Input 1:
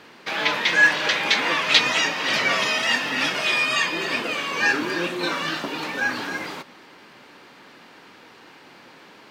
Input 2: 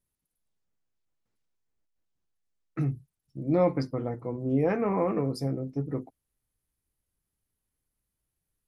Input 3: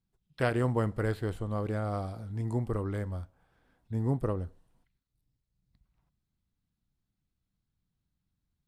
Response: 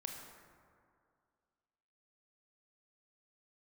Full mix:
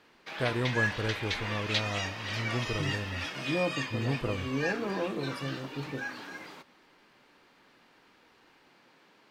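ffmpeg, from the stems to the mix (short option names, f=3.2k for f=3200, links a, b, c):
-filter_complex "[0:a]volume=-14dB[a];[1:a]volume=-7dB[b];[2:a]volume=-2.5dB[c];[a][b][c]amix=inputs=3:normalize=0"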